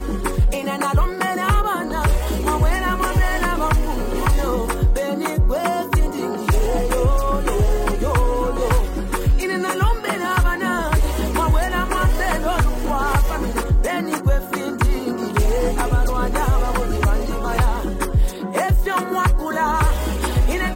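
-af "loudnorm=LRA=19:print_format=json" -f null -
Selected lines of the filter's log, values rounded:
"input_i" : "-20.6",
"input_tp" : "-8.2",
"input_lra" : "0.7",
"input_thresh" : "-30.6",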